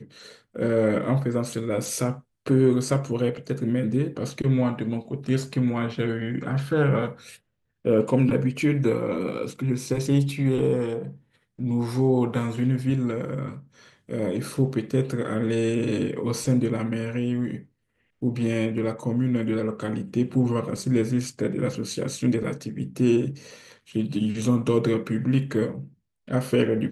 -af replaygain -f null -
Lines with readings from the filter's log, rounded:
track_gain = +5.3 dB
track_peak = 0.286